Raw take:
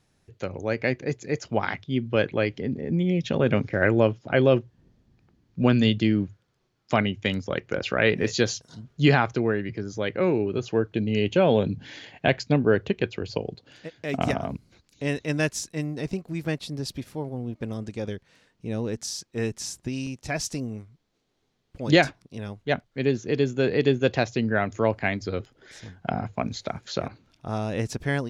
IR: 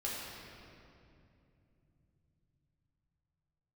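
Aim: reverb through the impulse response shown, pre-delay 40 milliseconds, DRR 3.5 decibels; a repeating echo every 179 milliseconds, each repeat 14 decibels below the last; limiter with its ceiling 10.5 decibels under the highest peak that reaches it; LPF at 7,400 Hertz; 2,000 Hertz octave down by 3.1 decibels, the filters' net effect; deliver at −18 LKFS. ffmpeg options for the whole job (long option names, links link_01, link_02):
-filter_complex "[0:a]lowpass=7400,equalizer=frequency=2000:width_type=o:gain=-4,alimiter=limit=-16dB:level=0:latency=1,aecho=1:1:179|358:0.2|0.0399,asplit=2[link_01][link_02];[1:a]atrim=start_sample=2205,adelay=40[link_03];[link_02][link_03]afir=irnorm=-1:irlink=0,volume=-7dB[link_04];[link_01][link_04]amix=inputs=2:normalize=0,volume=10dB"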